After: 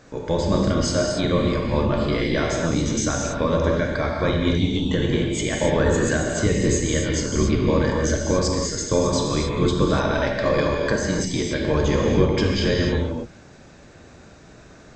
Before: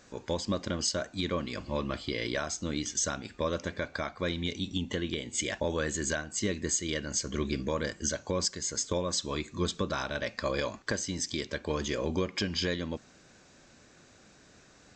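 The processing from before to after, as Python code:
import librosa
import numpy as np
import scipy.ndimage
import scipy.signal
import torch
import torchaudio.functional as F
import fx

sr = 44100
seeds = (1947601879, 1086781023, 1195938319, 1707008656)

y = fx.octave_divider(x, sr, octaves=1, level_db=-2.0)
y = fx.high_shelf(y, sr, hz=2400.0, db=-9.0)
y = fx.rev_gated(y, sr, seeds[0], gate_ms=310, shape='flat', drr_db=-1.5)
y = F.gain(torch.from_numpy(y), 8.5).numpy()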